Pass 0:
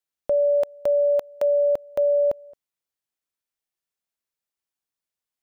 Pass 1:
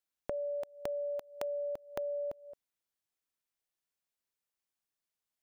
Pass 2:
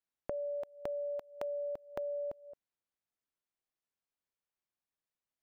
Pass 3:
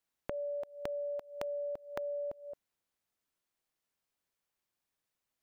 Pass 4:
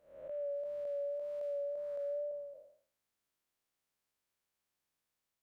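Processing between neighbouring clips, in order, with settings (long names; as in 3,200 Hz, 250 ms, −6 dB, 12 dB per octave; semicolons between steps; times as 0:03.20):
dynamic equaliser 540 Hz, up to −6 dB, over −33 dBFS; downward compressor 6 to 1, threshold −33 dBFS, peak gain reduction 9 dB; level −2.5 dB
high-shelf EQ 3,400 Hz −11 dB; level −1 dB
downward compressor, threshold −42 dBFS, peak gain reduction 8.5 dB; level +6 dB
spectrum smeared in time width 313 ms; tape wow and flutter 25 cents; level +1.5 dB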